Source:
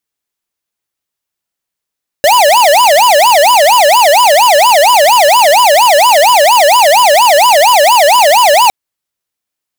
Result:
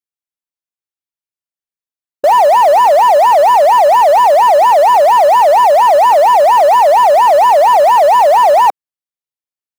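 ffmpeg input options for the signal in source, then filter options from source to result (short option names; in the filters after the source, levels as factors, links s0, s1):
-f lavfi -i "aevalsrc='0.501*(2*lt(mod((783*t-217/(2*PI*4.3)*sin(2*PI*4.3*t)),1),0.5)-1)':d=6.46:s=44100"
-af "afwtdn=0.355,asoftclip=type=hard:threshold=0.596"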